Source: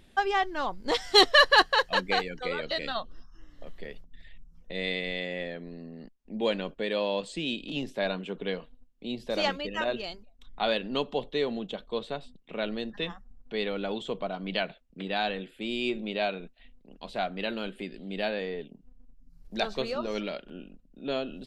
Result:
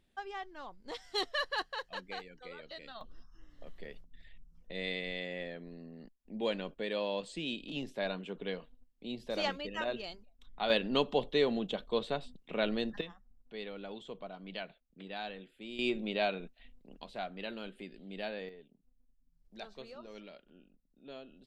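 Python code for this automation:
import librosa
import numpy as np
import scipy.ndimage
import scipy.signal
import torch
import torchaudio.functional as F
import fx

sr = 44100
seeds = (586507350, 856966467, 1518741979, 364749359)

y = fx.gain(x, sr, db=fx.steps((0.0, -16.0), (3.01, -6.0), (10.7, 0.0), (13.01, -12.0), (15.79, -2.5), (17.04, -9.0), (18.49, -17.0)))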